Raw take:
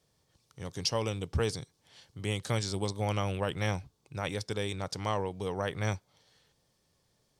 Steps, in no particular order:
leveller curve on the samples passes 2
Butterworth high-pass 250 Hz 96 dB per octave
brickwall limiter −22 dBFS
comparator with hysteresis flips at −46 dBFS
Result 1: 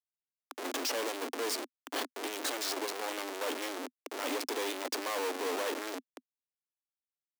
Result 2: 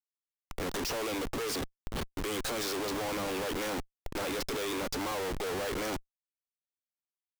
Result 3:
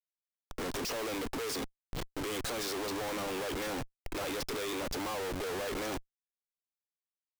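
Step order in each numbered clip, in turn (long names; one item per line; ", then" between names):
brickwall limiter, then leveller curve on the samples, then comparator with hysteresis, then Butterworth high-pass
Butterworth high-pass, then leveller curve on the samples, then brickwall limiter, then comparator with hysteresis
leveller curve on the samples, then brickwall limiter, then Butterworth high-pass, then comparator with hysteresis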